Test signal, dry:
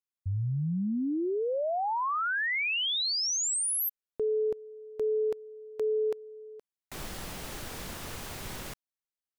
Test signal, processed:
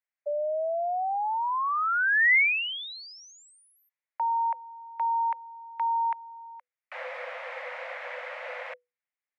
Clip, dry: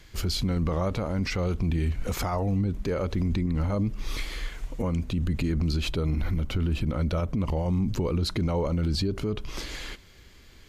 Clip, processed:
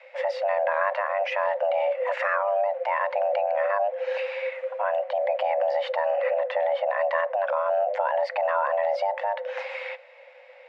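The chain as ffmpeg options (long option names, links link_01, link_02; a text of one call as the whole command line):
ffmpeg -i in.wav -af "lowpass=frequency=1600:width_type=q:width=2.9,afreqshift=490,volume=1dB" out.wav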